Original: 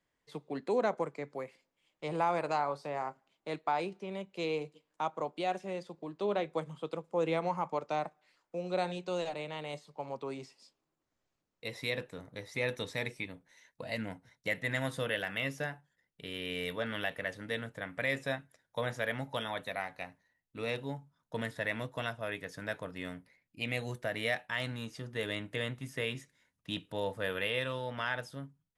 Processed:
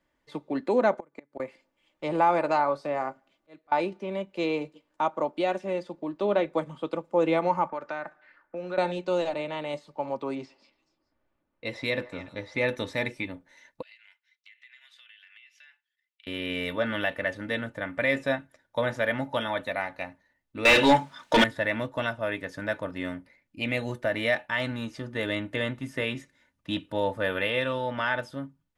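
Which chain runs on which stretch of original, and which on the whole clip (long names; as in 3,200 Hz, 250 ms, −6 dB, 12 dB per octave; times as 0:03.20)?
0:00.98–0:01.40: notch filter 5,100 Hz, Q 5.7 + gate with flip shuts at −30 dBFS, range −28 dB
0:02.69–0:03.72: notch filter 900 Hz, Q 8.2 + volume swells 688 ms
0:07.69–0:08.78: low-pass that shuts in the quiet parts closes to 1,600 Hz, open at −30.5 dBFS + parametric band 1,600 Hz +14.5 dB 0.65 octaves + downward compressor 2.5 to 1, threshold −42 dBFS
0:10.35–0:12.70: low-pass that shuts in the quiet parts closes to 2,700 Hz, open at −34 dBFS + echo through a band-pass that steps 143 ms, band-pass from 980 Hz, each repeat 1.4 octaves, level −11 dB
0:13.82–0:16.27: four-pole ladder high-pass 2,100 Hz, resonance 40% + parametric band 9,800 Hz −13.5 dB 0.73 octaves + downward compressor 10 to 1, threshold −55 dBFS
0:20.65–0:21.44: flat-topped bell 4,300 Hz +8.5 dB 2.8 octaves + mid-hump overdrive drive 30 dB, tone 4,600 Hz, clips at −16 dBFS
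whole clip: high-shelf EQ 4,400 Hz −11 dB; comb filter 3.4 ms, depth 44%; level +7.5 dB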